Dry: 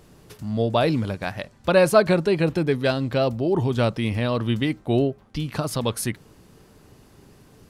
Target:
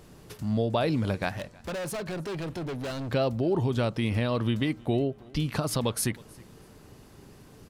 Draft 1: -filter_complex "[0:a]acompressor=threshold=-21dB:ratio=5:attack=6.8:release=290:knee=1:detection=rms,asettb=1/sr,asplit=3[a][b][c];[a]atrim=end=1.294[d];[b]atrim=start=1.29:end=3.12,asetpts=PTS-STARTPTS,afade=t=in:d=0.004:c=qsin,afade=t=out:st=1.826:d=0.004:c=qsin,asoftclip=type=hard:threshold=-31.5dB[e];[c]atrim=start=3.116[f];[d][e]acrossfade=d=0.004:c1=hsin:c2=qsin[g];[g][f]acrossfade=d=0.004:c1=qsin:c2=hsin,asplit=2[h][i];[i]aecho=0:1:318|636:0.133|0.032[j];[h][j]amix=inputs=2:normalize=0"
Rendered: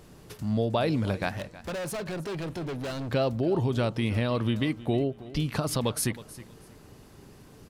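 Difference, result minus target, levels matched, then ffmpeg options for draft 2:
echo-to-direct +7.5 dB
-filter_complex "[0:a]acompressor=threshold=-21dB:ratio=5:attack=6.8:release=290:knee=1:detection=rms,asettb=1/sr,asplit=3[a][b][c];[a]atrim=end=1.294[d];[b]atrim=start=1.29:end=3.12,asetpts=PTS-STARTPTS,afade=t=in:d=0.004:c=qsin,afade=t=out:st=1.826:d=0.004:c=qsin,asoftclip=type=hard:threshold=-31.5dB[e];[c]atrim=start=3.116[f];[d][e]acrossfade=d=0.004:c1=hsin:c2=qsin[g];[g][f]acrossfade=d=0.004:c1=qsin:c2=hsin,asplit=2[h][i];[i]aecho=0:1:318|636:0.0562|0.0135[j];[h][j]amix=inputs=2:normalize=0"

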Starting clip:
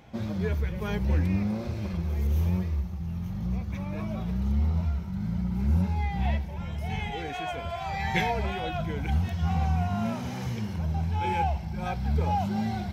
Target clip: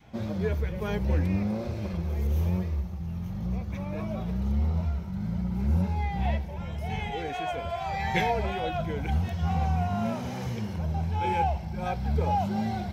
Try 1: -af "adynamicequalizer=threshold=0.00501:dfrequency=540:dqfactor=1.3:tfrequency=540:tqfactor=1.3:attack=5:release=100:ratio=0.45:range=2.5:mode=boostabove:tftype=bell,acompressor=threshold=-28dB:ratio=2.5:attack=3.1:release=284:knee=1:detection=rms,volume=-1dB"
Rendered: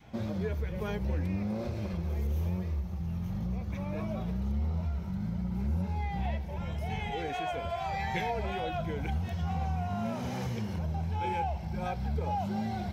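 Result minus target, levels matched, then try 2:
compressor: peak gain reduction +8 dB
-af "adynamicequalizer=threshold=0.00501:dfrequency=540:dqfactor=1.3:tfrequency=540:tqfactor=1.3:attack=5:release=100:ratio=0.45:range=2.5:mode=boostabove:tftype=bell,volume=-1dB"

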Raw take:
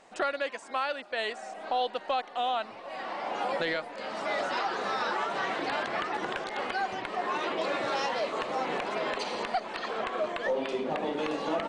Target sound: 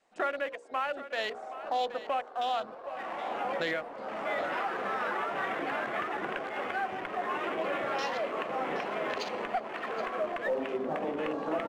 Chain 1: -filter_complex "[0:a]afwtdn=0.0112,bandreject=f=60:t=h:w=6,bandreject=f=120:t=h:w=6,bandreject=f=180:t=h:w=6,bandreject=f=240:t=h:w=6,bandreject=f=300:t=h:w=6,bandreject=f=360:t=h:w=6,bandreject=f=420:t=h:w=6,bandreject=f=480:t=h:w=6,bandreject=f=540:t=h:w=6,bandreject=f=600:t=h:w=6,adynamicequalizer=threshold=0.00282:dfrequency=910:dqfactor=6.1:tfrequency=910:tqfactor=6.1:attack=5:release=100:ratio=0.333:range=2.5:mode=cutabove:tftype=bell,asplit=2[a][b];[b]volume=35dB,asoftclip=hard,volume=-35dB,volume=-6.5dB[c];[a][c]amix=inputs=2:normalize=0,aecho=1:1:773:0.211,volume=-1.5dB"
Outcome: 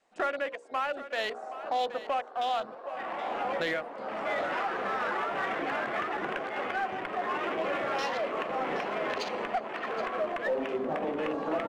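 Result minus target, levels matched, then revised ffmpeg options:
overloaded stage: distortion -4 dB
-filter_complex "[0:a]afwtdn=0.0112,bandreject=f=60:t=h:w=6,bandreject=f=120:t=h:w=6,bandreject=f=180:t=h:w=6,bandreject=f=240:t=h:w=6,bandreject=f=300:t=h:w=6,bandreject=f=360:t=h:w=6,bandreject=f=420:t=h:w=6,bandreject=f=480:t=h:w=6,bandreject=f=540:t=h:w=6,bandreject=f=600:t=h:w=6,adynamicequalizer=threshold=0.00282:dfrequency=910:dqfactor=6.1:tfrequency=910:tqfactor=6.1:attack=5:release=100:ratio=0.333:range=2.5:mode=cutabove:tftype=bell,asplit=2[a][b];[b]volume=46dB,asoftclip=hard,volume=-46dB,volume=-6.5dB[c];[a][c]amix=inputs=2:normalize=0,aecho=1:1:773:0.211,volume=-1.5dB"

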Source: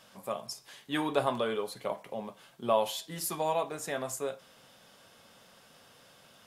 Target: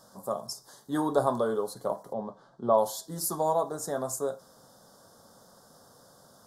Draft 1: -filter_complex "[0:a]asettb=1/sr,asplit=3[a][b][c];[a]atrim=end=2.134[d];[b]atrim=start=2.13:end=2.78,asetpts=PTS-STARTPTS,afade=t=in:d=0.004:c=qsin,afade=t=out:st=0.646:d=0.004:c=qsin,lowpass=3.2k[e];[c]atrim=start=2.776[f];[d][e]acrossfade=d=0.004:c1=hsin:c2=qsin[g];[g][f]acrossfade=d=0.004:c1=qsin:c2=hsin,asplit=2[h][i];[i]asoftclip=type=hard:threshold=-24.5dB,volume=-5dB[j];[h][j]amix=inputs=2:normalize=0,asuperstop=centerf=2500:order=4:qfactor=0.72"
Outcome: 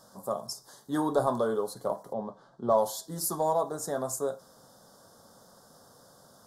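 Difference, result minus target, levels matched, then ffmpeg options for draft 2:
hard clip: distortion +18 dB
-filter_complex "[0:a]asettb=1/sr,asplit=3[a][b][c];[a]atrim=end=2.134[d];[b]atrim=start=2.13:end=2.78,asetpts=PTS-STARTPTS,afade=t=in:d=0.004:c=qsin,afade=t=out:st=0.646:d=0.004:c=qsin,lowpass=3.2k[e];[c]atrim=start=2.776[f];[d][e]acrossfade=d=0.004:c1=hsin:c2=qsin[g];[g][f]acrossfade=d=0.004:c1=qsin:c2=hsin,asplit=2[h][i];[i]asoftclip=type=hard:threshold=-15.5dB,volume=-5dB[j];[h][j]amix=inputs=2:normalize=0,asuperstop=centerf=2500:order=4:qfactor=0.72"

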